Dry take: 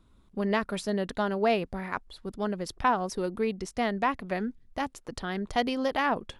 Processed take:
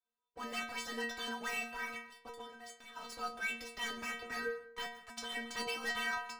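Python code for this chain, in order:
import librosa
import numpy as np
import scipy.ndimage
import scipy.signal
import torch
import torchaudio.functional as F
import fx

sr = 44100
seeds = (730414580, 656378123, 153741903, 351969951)

y = scipy.signal.sosfilt(scipy.signal.butter(2, 4700.0, 'lowpass', fs=sr, output='sos'), x)
y = fx.dynamic_eq(y, sr, hz=1000.0, q=3.7, threshold_db=-45.0, ratio=4.0, max_db=-7)
y = scipy.signal.sosfilt(scipy.signal.butter(2, 57.0, 'highpass', fs=sr, output='sos'), y)
y = fx.low_shelf(y, sr, hz=180.0, db=6.5, at=(3.85, 4.83), fade=0.02)
y = fx.spec_gate(y, sr, threshold_db=-15, keep='weak')
y = fx.leveller(y, sr, passes=5)
y = fx.level_steps(y, sr, step_db=21, at=(2.4, 2.95), fade=0.02)
y = fx.stiff_resonator(y, sr, f0_hz=230.0, decay_s=0.6, stiffness=0.008)
y = fx.rev_plate(y, sr, seeds[0], rt60_s=0.52, hf_ratio=0.55, predelay_ms=120, drr_db=14.5)
y = y * librosa.db_to_amplitude(5.5)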